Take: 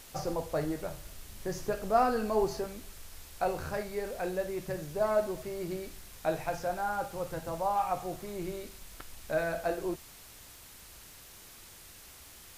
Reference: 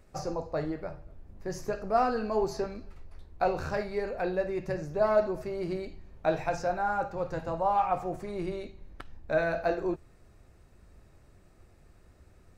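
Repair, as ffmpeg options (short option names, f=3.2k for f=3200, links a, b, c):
-af "adeclick=t=4,afwtdn=0.0028,asetnsamples=n=441:p=0,asendcmd='2.59 volume volume 3.5dB',volume=0dB"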